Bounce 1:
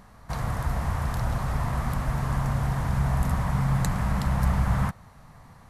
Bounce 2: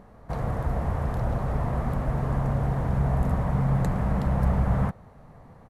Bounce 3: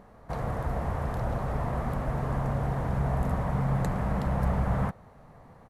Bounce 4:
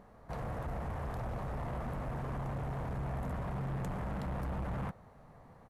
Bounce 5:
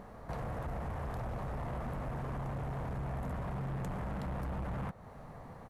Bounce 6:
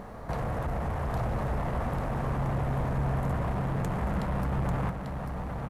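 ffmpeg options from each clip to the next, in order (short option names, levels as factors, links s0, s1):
-af "firequalizer=gain_entry='entry(110,0);entry(450,8);entry(990,-3);entry(4900,-12)':delay=0.05:min_phase=1"
-af "lowshelf=f=320:g=-4.5"
-af "asoftclip=type=tanh:threshold=0.0355,volume=0.596"
-af "acompressor=threshold=0.00398:ratio=2.5,volume=2.37"
-af "aecho=1:1:843:0.531,volume=2.37"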